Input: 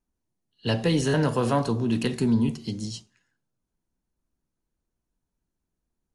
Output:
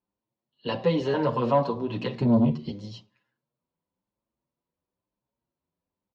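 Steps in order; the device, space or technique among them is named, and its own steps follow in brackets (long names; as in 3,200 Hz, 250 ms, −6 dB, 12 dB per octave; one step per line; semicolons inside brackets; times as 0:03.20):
0:02.21–0:02.71: low-shelf EQ 280 Hz +9.5 dB
barber-pole flanger into a guitar amplifier (barber-pole flanger 7.4 ms +1 Hz; soft clipping −15 dBFS, distortion −13 dB; loudspeaker in its box 96–4,200 Hz, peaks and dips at 550 Hz +9 dB, 1,000 Hz +8 dB, 1,600 Hz −4 dB)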